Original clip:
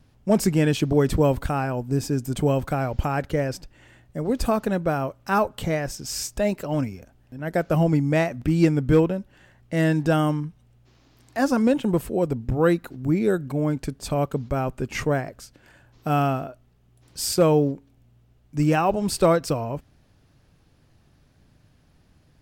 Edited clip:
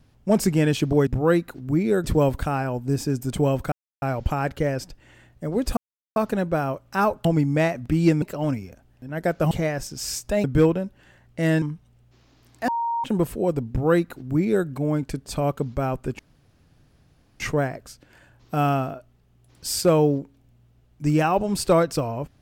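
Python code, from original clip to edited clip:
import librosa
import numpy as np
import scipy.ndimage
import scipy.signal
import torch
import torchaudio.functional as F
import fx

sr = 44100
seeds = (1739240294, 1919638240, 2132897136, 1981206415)

y = fx.edit(x, sr, fx.insert_silence(at_s=2.75, length_s=0.3),
    fx.insert_silence(at_s=4.5, length_s=0.39),
    fx.swap(start_s=5.59, length_s=0.93, other_s=7.81, other_length_s=0.97),
    fx.cut(start_s=9.96, length_s=0.4),
    fx.bleep(start_s=11.42, length_s=0.36, hz=932.0, db=-22.0),
    fx.duplicate(start_s=12.43, length_s=0.97, to_s=1.07),
    fx.insert_room_tone(at_s=14.93, length_s=1.21), tone=tone)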